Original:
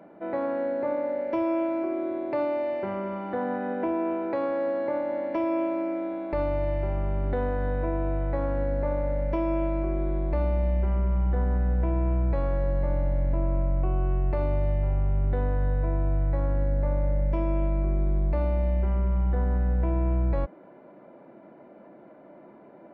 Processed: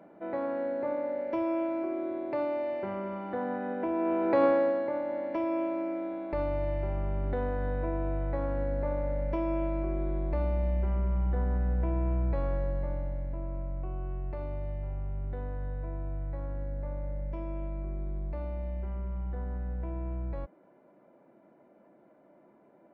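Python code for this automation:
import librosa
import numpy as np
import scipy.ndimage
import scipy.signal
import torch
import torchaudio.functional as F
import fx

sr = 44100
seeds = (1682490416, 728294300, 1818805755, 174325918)

y = fx.gain(x, sr, db=fx.line((3.88, -4.0), (4.45, 5.5), (4.89, -4.0), (12.52, -4.0), (13.3, -10.5)))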